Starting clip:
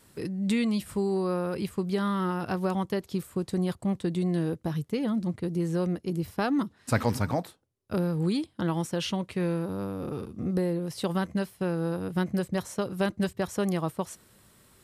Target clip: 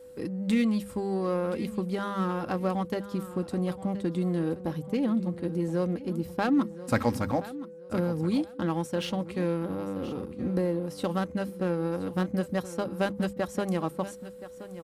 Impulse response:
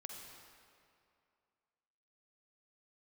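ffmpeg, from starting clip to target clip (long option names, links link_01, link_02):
-filter_complex "[0:a]aeval=exprs='val(0)+0.00501*sin(2*PI*500*n/s)':channel_layout=same,bandreject=frequency=50:width_type=h:width=6,bandreject=frequency=100:width_type=h:width=6,bandreject=frequency=150:width_type=h:width=6,bandreject=frequency=200:width_type=h:width=6,aecho=1:1:3.7:0.38,asplit=2[link_01][link_02];[link_02]adynamicsmooth=sensitivity=8:basefreq=550,volume=-2dB[link_03];[link_01][link_03]amix=inputs=2:normalize=0,aecho=1:1:1024|2048|3072:0.178|0.0462|0.012,volume=-5dB"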